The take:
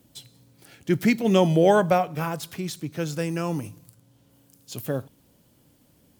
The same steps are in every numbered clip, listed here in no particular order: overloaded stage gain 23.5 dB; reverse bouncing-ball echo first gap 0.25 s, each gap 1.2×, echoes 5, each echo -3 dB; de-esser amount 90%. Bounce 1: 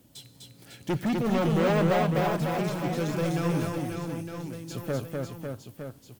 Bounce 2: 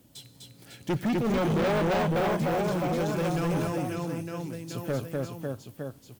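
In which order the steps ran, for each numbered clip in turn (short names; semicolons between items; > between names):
de-esser > overloaded stage > reverse bouncing-ball echo; de-esser > reverse bouncing-ball echo > overloaded stage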